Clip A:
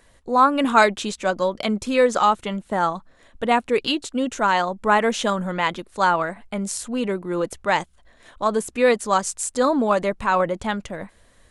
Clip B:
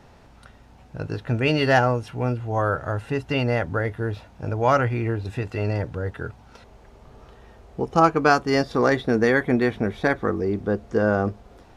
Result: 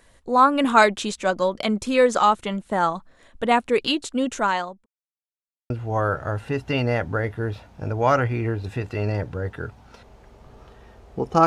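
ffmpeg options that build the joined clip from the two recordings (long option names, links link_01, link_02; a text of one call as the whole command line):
ffmpeg -i cue0.wav -i cue1.wav -filter_complex "[0:a]apad=whole_dur=11.46,atrim=end=11.46,asplit=2[link_01][link_02];[link_01]atrim=end=4.86,asetpts=PTS-STARTPTS,afade=type=out:start_time=4.35:duration=0.51[link_03];[link_02]atrim=start=4.86:end=5.7,asetpts=PTS-STARTPTS,volume=0[link_04];[1:a]atrim=start=2.31:end=8.07,asetpts=PTS-STARTPTS,afade=type=in:duration=0.004:curve=hsin[link_05];[link_03][link_04][link_05]concat=n=3:v=0:a=1" out.wav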